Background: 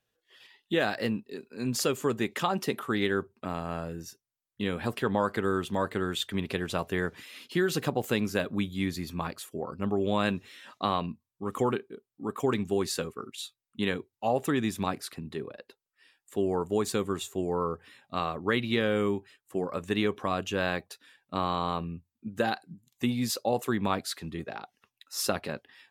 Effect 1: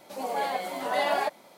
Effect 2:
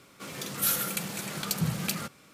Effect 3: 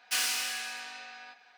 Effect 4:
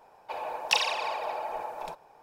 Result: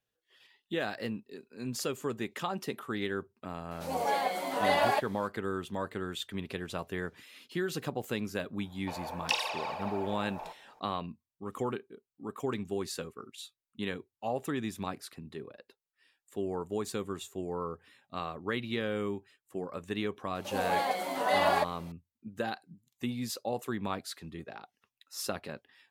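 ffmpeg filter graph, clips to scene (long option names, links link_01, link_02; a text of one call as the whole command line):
ffmpeg -i bed.wav -i cue0.wav -i cue1.wav -i cue2.wav -i cue3.wav -filter_complex "[1:a]asplit=2[link_01][link_02];[0:a]volume=-6.5dB[link_03];[4:a]asplit=2[link_04][link_05];[link_05]adelay=17,volume=-13.5dB[link_06];[link_04][link_06]amix=inputs=2:normalize=0[link_07];[link_01]atrim=end=1.57,asetpts=PTS-STARTPTS,volume=-0.5dB,afade=type=in:duration=0.004:curve=hsin,afade=type=out:start_time=1.566:duration=0.004:curve=hsin,adelay=3710[link_08];[link_07]atrim=end=2.22,asetpts=PTS-STARTPTS,volume=-5.5dB,afade=type=in:duration=0.004:curve=hsin,afade=type=out:start_time=2.216:duration=0.004:curve=hsin,adelay=378378S[link_09];[link_02]atrim=end=1.57,asetpts=PTS-STARTPTS,volume=-0.5dB,afade=type=in:duration=0.004:curve=hsin,afade=type=out:start_time=1.566:duration=0.004:curve=hsin,adelay=20350[link_10];[link_03][link_08][link_09][link_10]amix=inputs=4:normalize=0" out.wav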